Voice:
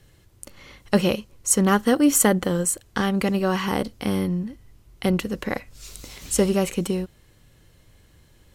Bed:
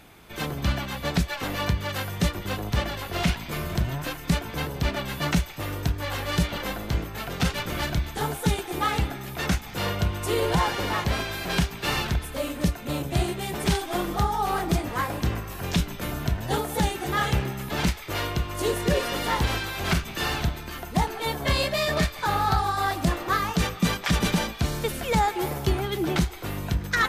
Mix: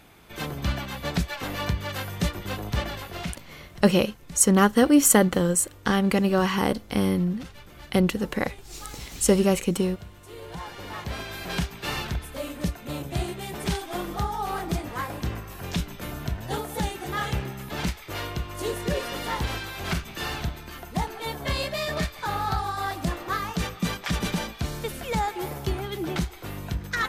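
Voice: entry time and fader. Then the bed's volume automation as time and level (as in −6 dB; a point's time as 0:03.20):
2.90 s, +0.5 dB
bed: 0:02.97 −2 dB
0:03.65 −18.5 dB
0:10.30 −18.5 dB
0:11.36 −4 dB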